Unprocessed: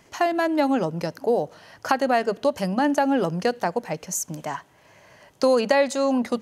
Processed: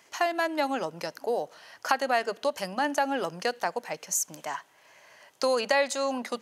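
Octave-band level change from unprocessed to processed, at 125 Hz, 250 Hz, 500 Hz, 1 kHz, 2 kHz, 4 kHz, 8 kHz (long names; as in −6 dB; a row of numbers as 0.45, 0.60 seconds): −15.5, −11.5, −6.5, −4.0, −1.0, −0.5, 0.0 decibels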